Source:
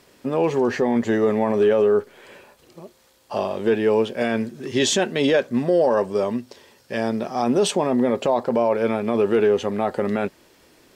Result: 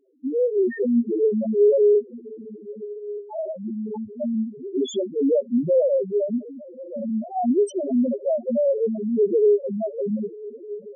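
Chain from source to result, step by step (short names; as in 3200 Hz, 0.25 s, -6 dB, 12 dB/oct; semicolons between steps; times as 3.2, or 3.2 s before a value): 3.56–4.21 fixed phaser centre 2500 Hz, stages 8; diffused feedback echo 1.181 s, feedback 51%, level -15.5 dB; loudest bins only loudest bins 1; gain +6 dB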